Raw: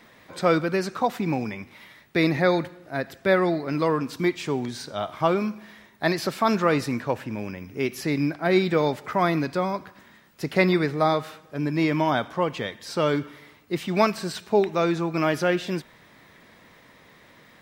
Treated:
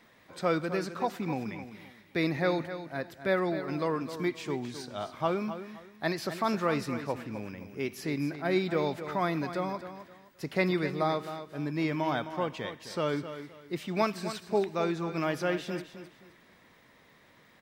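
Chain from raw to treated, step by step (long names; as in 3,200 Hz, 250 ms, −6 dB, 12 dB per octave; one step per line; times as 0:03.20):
repeating echo 261 ms, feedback 27%, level −11 dB
level −7.5 dB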